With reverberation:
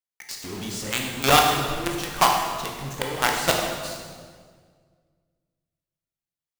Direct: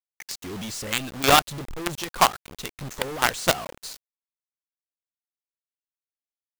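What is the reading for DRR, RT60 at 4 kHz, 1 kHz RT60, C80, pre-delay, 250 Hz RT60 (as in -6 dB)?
0.5 dB, 1.4 s, 1.6 s, 4.5 dB, 15 ms, 2.1 s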